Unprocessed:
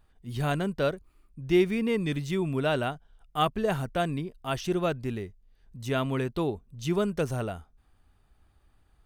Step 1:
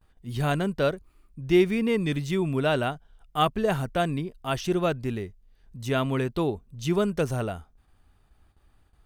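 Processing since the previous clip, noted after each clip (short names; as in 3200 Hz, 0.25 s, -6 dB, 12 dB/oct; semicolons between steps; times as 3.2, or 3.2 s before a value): gate with hold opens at -54 dBFS; gain +2.5 dB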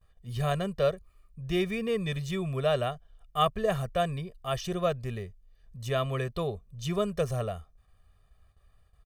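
comb 1.7 ms, depth 86%; gain -5.5 dB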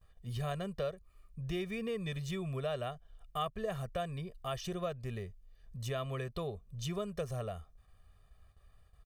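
compressor 2.5:1, threshold -38 dBFS, peak gain reduction 12.5 dB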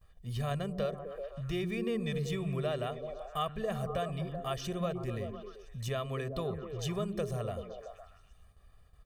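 delay with a stepping band-pass 0.127 s, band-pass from 210 Hz, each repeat 0.7 oct, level -1 dB; gain +2 dB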